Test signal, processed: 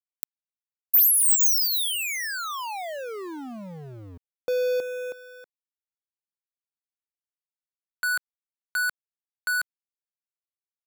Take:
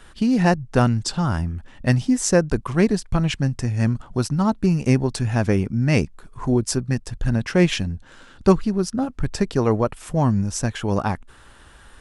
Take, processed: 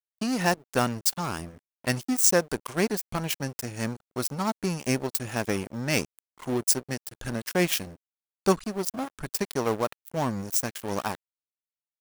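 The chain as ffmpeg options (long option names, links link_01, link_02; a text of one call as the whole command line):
ffmpeg -i in.wav -af "aeval=exprs='sgn(val(0))*max(abs(val(0))-0.0335,0)':channel_layout=same,aemphasis=mode=production:type=bsi,volume=-3dB" out.wav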